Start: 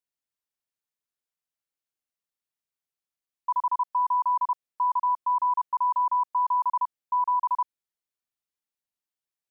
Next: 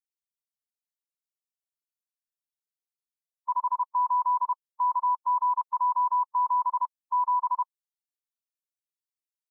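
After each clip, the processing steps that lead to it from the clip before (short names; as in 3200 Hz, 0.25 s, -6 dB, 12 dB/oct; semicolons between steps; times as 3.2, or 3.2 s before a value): per-bin expansion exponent 2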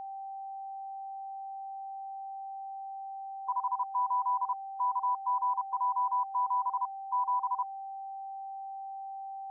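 whine 780 Hz -33 dBFS; gain -5 dB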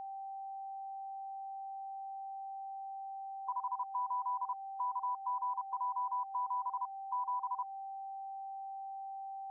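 compressor 2:1, threshold -33 dBFS, peak gain reduction 4 dB; gain -3 dB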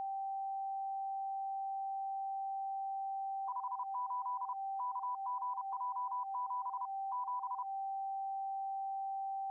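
limiter -37.5 dBFS, peak gain reduction 8.5 dB; gain +4.5 dB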